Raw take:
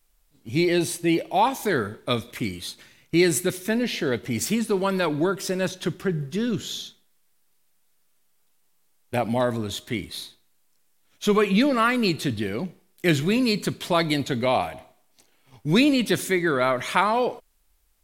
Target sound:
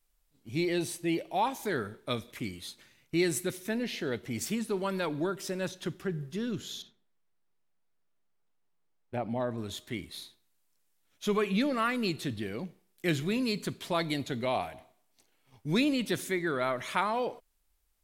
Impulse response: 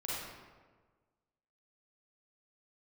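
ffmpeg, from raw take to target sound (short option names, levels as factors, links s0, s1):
-filter_complex "[0:a]asettb=1/sr,asplit=3[s0][s1][s2];[s0]atrim=end=6.824[s3];[s1]atrim=start=6.82:end=9.58,asetpts=PTS-STARTPTS,afade=t=in:d=0.004:c=qsin,afade=t=out:st=2.756:d=0.004:c=qsin,lowpass=f=1300:p=1[s4];[s2]atrim=start=9.576[s5];[s3][s4]acrossfade=d=0.004:c1=hsin:c2=qsin[s6];[s6][s5]acrossfade=d=0.004:c1=qsin:c2=hsin,volume=0.376"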